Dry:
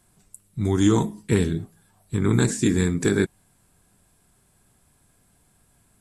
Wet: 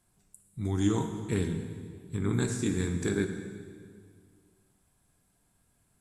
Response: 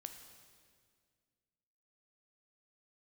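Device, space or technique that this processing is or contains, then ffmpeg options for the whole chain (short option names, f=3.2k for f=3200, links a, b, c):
stairwell: -filter_complex "[1:a]atrim=start_sample=2205[a];[0:a][a]afir=irnorm=-1:irlink=0,volume=-4dB"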